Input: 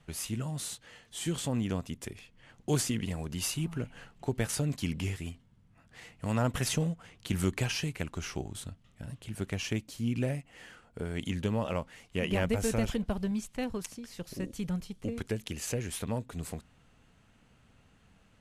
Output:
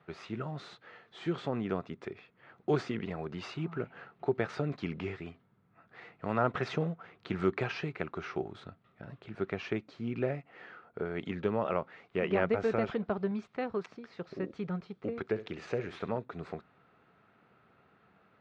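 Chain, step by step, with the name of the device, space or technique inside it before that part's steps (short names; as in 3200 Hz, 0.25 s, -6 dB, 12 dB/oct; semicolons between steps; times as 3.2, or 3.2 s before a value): 15.25–16.18 flutter echo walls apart 11.4 m, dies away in 0.3 s; kitchen radio (speaker cabinet 170–3500 Hz, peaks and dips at 250 Hz -5 dB, 390 Hz +7 dB, 710 Hz +4 dB, 1300 Hz +8 dB, 3000 Hz -9 dB)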